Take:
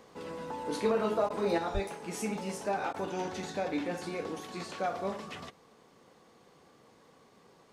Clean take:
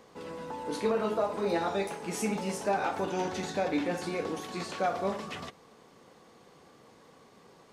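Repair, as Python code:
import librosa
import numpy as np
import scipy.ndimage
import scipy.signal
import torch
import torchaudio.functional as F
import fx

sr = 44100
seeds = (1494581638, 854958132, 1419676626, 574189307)

y = fx.fix_deplosive(x, sr, at_s=(1.73,))
y = fx.fix_interpolate(y, sr, at_s=(1.29, 2.93), length_ms=11.0)
y = fx.fix_level(y, sr, at_s=1.58, step_db=3.5)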